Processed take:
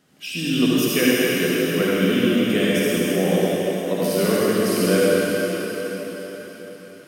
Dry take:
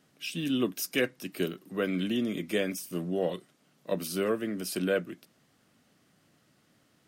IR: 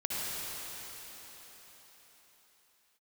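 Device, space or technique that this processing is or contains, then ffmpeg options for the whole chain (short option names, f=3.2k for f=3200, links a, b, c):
cathedral: -filter_complex "[1:a]atrim=start_sample=2205[a];[0:a][a]afir=irnorm=-1:irlink=0,volume=5.5dB"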